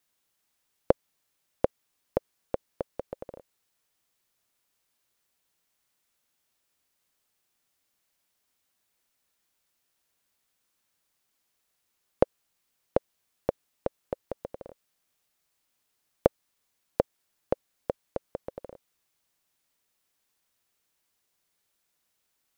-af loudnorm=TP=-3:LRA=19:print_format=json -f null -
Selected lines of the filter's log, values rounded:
"input_i" : "-34.2",
"input_tp" : "-3.3",
"input_lra" : "11.9",
"input_thresh" : "-44.8",